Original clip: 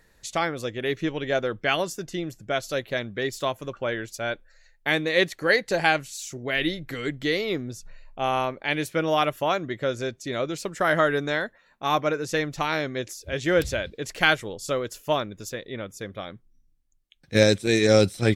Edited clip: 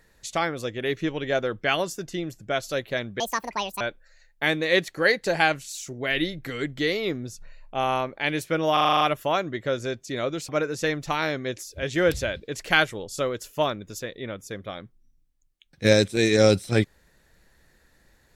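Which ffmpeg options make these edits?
-filter_complex "[0:a]asplit=11[s0][s1][s2][s3][s4][s5][s6][s7][s8][s9][s10];[s0]atrim=end=3.204[s11];[s1]atrim=start=3.2:end=4.25,asetpts=PTS-STARTPTS,asetrate=76293,aresample=44100[s12];[s2]atrim=start=4.246:end=9.212[s13];[s3]atrim=start=9.168:end=9.212[s14];[s4]atrim=start=9.168:end=9.212[s15];[s5]atrim=start=9.168:end=9.212[s16];[s6]atrim=start=9.168:end=9.212[s17];[s7]atrim=start=9.168:end=9.212[s18];[s8]atrim=start=9.168:end=9.212[s19];[s9]atrim=start=9.168:end=10.652[s20];[s10]atrim=start=11.988[s21];[s11][s12]acrossfade=d=0.004:c1=hsin:c2=hsin[s22];[s22][s13]acrossfade=d=0.004:c1=hsin:c2=hsin[s23];[s23][s14]acrossfade=d=0.004:c1=hsin:c2=hsin[s24];[s24][s15]acrossfade=d=0.004:c1=hsin:c2=hsin[s25];[s25][s16]acrossfade=d=0.004:c1=hsin:c2=hsin[s26];[s26][s17]acrossfade=d=0.004:c1=hsin:c2=hsin[s27];[s27][s18]acrossfade=d=0.004:c1=hsin:c2=hsin[s28];[s28][s19]acrossfade=d=0.004:c1=hsin:c2=hsin[s29];[s29][s20]acrossfade=d=0.004:c1=hsin:c2=hsin[s30];[s30][s21]acrossfade=d=0.004:c1=hsin:c2=hsin"

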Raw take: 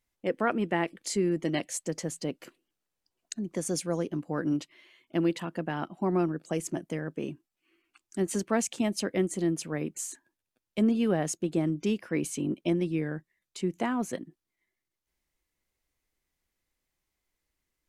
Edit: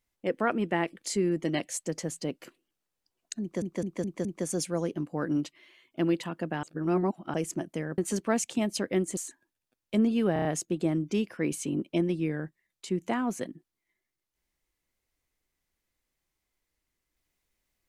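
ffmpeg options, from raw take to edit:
-filter_complex "[0:a]asplit=13[s0][s1][s2][s3][s4][s5][s6][s7][s8][s9][s10][s11][s12];[s0]atrim=end=3.622[s13];[s1]atrim=start=3.408:end=3.622[s14];[s2]atrim=start=3.408:end=3.622[s15];[s3]atrim=start=3.408:end=3.622[s16];[s4]atrim=start=3.408:end=5.792[s17];[s5]atrim=start=5.788:end=6.502,asetpts=PTS-STARTPTS,areverse[s18];[s6]atrim=start=6.498:end=7.142[s19];[s7]atrim=start=8.208:end=9.402[s20];[s8]atrim=start=10.008:end=11.202[s21];[s9]atrim=start=11.168:end=11.202[s22];[s10]atrim=start=11.168:end=11.202[s23];[s11]atrim=start=11.168:end=11.202[s24];[s12]atrim=start=11.168[s25];[s13][s14]acrossfade=d=0.004:c1=hsin:c2=hsin[s26];[s26][s15]acrossfade=d=0.004:c1=hsin:c2=hsin[s27];[s27][s16]acrossfade=d=0.004:c1=hsin:c2=hsin[s28];[s28][s17]acrossfade=d=0.004:c1=hsin:c2=hsin[s29];[s29][s18]acrossfade=d=0.004:c1=hsin:c2=hsin[s30];[s30][s19]acrossfade=d=0.004:c1=hsin:c2=hsin[s31];[s31][s20]acrossfade=d=0.004:c1=hsin:c2=hsin[s32];[s32][s21]acrossfade=d=0.004:c1=hsin:c2=hsin[s33];[s33][s22]acrossfade=d=0.004:c1=hsin:c2=hsin[s34];[s34][s23]acrossfade=d=0.004:c1=hsin:c2=hsin[s35];[s35][s24]acrossfade=d=0.004:c1=hsin:c2=hsin[s36];[s36][s25]acrossfade=d=0.004:c1=hsin:c2=hsin"

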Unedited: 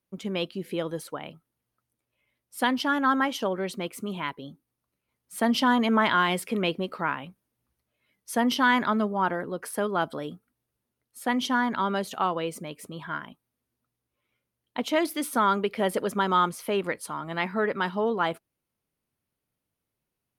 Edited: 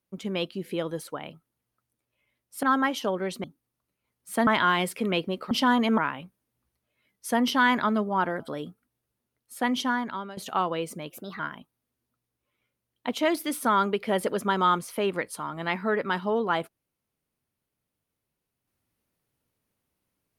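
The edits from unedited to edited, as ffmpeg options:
-filter_complex "[0:a]asplit=10[s0][s1][s2][s3][s4][s5][s6][s7][s8][s9];[s0]atrim=end=2.632[s10];[s1]atrim=start=3.008:end=3.822[s11];[s2]atrim=start=4.478:end=5.512[s12];[s3]atrim=start=5.978:end=7.022[s13];[s4]atrim=start=5.508:end=5.982[s14];[s5]atrim=start=7.018:end=9.442[s15];[s6]atrim=start=10.048:end=12.02,asetpts=PTS-STARTPTS,afade=t=out:st=1.382:d=0.59:silence=0.133352[s16];[s7]atrim=start=12.02:end=12.754,asetpts=PTS-STARTPTS,afade=t=in:d=0.004:c=hsin:silence=0.133352[s17];[s8]atrim=start=12.75:end=13.1,asetpts=PTS-STARTPTS,asetrate=52479,aresample=44100[s18];[s9]atrim=start=13.096[s19];[s10][s11]acrossfade=d=0.004:c1=hsin:c2=hsin[s20];[s20][s12]acrossfade=d=0.004:c1=hsin:c2=hsin[s21];[s21][s13]acrossfade=d=0.004:c1=hsin:c2=hsin[s22];[s22][s14]acrossfade=d=0.004:c1=hsin:c2=hsin[s23];[s23][s15]acrossfade=d=0.004:c1=hsin:c2=hsin[s24];[s16][s17]concat=n=2:v=0:a=1[s25];[s24][s25]acrossfade=d=0.004:c1=hsin:c2=hsin[s26];[s26][s18]acrossfade=d=0.004:c1=hsin:c2=hsin[s27];[s27][s19]acrossfade=d=0.004:c1=hsin:c2=hsin"

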